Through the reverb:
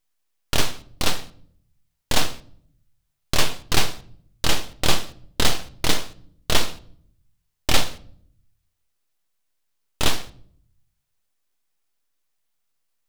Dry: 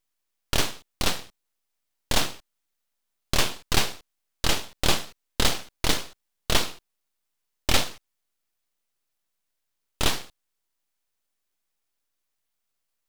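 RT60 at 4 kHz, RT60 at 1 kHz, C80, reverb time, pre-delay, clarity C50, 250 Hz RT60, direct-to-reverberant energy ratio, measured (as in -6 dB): 0.45 s, 0.50 s, 22.5 dB, 0.60 s, 7 ms, 19.0 dB, 0.95 s, 11.5 dB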